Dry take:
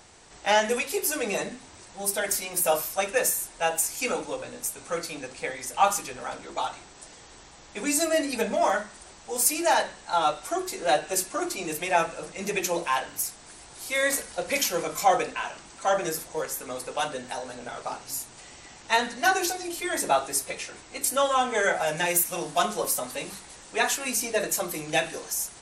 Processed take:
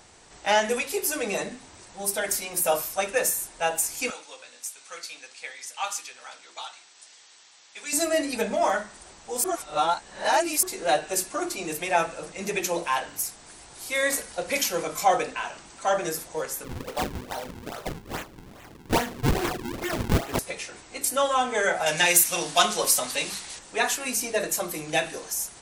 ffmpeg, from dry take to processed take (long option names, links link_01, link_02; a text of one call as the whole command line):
ffmpeg -i in.wav -filter_complex "[0:a]asettb=1/sr,asplit=3[link_01][link_02][link_03];[link_01]atrim=end=4.104[link_04];[link_02]atrim=start=4.1:end=7.93,asetpts=PTS-STARTPTS,afade=type=in:duration=0.004:curve=qsin,afade=type=out:start_time=3.826:duration=0.004:curve=qsin,bandpass=frequency=4200:width_type=q:width=0.7[link_05];[link_03]atrim=start=7.926[link_06];[link_04][link_05]acrossfade=duration=0.004:curve1=hsin:curve2=qsin[link_07];[link_07][link_06]acrossfade=duration=0.004:curve1=qsin:curve2=hsin,asettb=1/sr,asplit=3[link_08][link_09][link_10];[link_08]atrim=end=16.644[link_11];[link_09]atrim=start=16.64:end=20.39,asetpts=PTS-STARTPTS,afade=type=in:duration=0.004:curve=qsin,afade=type=out:start_time=3.746:duration=0.004:curve=qsin,acrusher=samples=42:mix=1:aa=0.000001:lfo=1:lforange=67.2:lforate=2.4[link_12];[link_10]atrim=start=20.386[link_13];[link_11][link_12]acrossfade=duration=0.004:curve1=hsin:curve2=qsin[link_14];[link_14][link_13]acrossfade=duration=0.004:curve1=qsin:curve2=hsin,asettb=1/sr,asplit=3[link_15][link_16][link_17];[link_15]atrim=end=21.864[link_18];[link_16]atrim=start=21.86:end=23.59,asetpts=PTS-STARTPTS,afade=type=in:duration=0.004:curve=qsin,afade=type=out:start_time=1.726:duration=0.004:curve=qsin,equalizer=frequency=4200:width=0.4:gain=10[link_19];[link_17]atrim=start=23.586[link_20];[link_18][link_19]acrossfade=duration=0.004:curve1=hsin:curve2=qsin[link_21];[link_21][link_20]acrossfade=duration=0.004:curve1=qsin:curve2=hsin,asplit=3[link_22][link_23][link_24];[link_22]atrim=end=9.442[link_25];[link_23]atrim=start=9.438:end=10.632,asetpts=PTS-STARTPTS,areverse[link_26];[link_24]atrim=start=10.628[link_27];[link_25][link_26]acrossfade=duration=0.004:curve1=hsin:curve2=hsin[link_28];[link_28][link_27]acrossfade=duration=0.004:curve1=hsin:curve2=hsin" out.wav